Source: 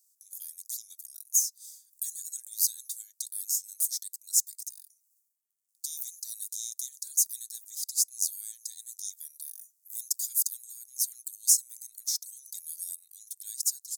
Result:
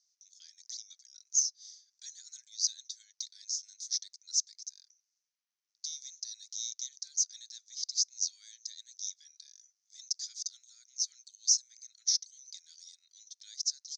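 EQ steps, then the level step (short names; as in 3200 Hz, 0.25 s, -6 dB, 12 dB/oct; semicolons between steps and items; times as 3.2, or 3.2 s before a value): HPF 1400 Hz; Chebyshev low-pass 6100 Hz, order 6; +5.0 dB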